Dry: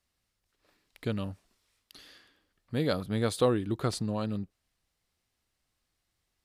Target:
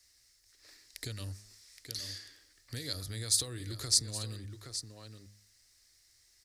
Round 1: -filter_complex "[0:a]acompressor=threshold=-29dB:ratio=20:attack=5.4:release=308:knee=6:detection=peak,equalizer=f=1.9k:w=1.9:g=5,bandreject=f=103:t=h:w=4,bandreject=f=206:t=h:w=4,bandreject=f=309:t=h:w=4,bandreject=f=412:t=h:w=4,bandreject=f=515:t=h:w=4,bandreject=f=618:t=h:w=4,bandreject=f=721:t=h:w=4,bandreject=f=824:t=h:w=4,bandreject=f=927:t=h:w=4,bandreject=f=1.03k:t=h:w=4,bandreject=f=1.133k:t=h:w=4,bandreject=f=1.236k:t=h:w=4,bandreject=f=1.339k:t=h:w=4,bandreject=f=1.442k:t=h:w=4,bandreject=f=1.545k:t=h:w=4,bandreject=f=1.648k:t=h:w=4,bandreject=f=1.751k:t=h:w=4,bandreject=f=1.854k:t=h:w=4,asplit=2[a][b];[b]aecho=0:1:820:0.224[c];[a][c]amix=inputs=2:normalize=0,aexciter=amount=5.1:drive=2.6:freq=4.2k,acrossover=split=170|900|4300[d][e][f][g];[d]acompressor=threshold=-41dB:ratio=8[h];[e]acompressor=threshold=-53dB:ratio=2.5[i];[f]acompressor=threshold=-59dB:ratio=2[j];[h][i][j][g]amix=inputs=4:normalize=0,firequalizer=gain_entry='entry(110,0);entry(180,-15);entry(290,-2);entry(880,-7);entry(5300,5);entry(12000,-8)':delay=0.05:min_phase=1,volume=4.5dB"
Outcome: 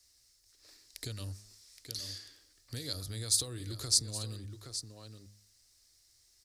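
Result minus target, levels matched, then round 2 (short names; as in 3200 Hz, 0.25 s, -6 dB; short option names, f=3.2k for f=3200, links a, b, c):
2000 Hz band -4.0 dB
-filter_complex "[0:a]acompressor=threshold=-29dB:ratio=20:attack=5.4:release=308:knee=6:detection=peak,equalizer=f=1.9k:w=1.9:g=13,bandreject=f=103:t=h:w=4,bandreject=f=206:t=h:w=4,bandreject=f=309:t=h:w=4,bandreject=f=412:t=h:w=4,bandreject=f=515:t=h:w=4,bandreject=f=618:t=h:w=4,bandreject=f=721:t=h:w=4,bandreject=f=824:t=h:w=4,bandreject=f=927:t=h:w=4,bandreject=f=1.03k:t=h:w=4,bandreject=f=1.133k:t=h:w=4,bandreject=f=1.236k:t=h:w=4,bandreject=f=1.339k:t=h:w=4,bandreject=f=1.442k:t=h:w=4,bandreject=f=1.545k:t=h:w=4,bandreject=f=1.648k:t=h:w=4,bandreject=f=1.751k:t=h:w=4,bandreject=f=1.854k:t=h:w=4,asplit=2[a][b];[b]aecho=0:1:820:0.224[c];[a][c]amix=inputs=2:normalize=0,aexciter=amount=5.1:drive=2.6:freq=4.2k,acrossover=split=170|900|4300[d][e][f][g];[d]acompressor=threshold=-41dB:ratio=8[h];[e]acompressor=threshold=-53dB:ratio=2.5[i];[f]acompressor=threshold=-59dB:ratio=2[j];[h][i][j][g]amix=inputs=4:normalize=0,firequalizer=gain_entry='entry(110,0);entry(180,-15);entry(290,-2);entry(880,-7);entry(5300,5);entry(12000,-8)':delay=0.05:min_phase=1,volume=4.5dB"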